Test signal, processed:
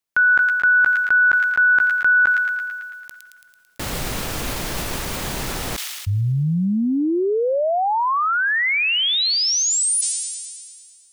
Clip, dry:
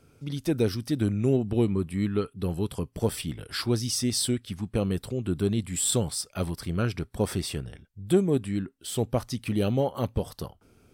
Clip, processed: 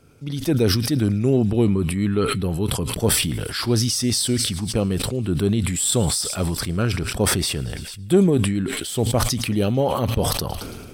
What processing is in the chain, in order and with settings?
feedback echo behind a high-pass 111 ms, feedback 73%, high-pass 2.2 kHz, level -20.5 dB; decay stretcher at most 31 dB/s; trim +4.5 dB

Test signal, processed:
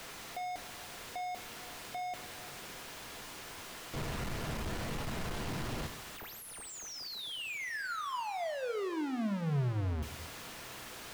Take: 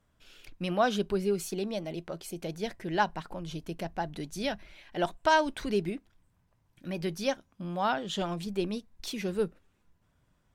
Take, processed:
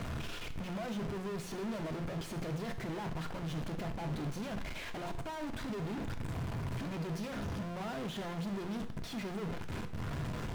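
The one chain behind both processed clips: one-bit comparator; low-pass 2.3 kHz 6 dB/octave; two-slope reverb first 0.6 s, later 3.6 s, from -18 dB, DRR 7 dB; dynamic bell 120 Hz, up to +5 dB, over -44 dBFS, Q 0.77; trim -7 dB

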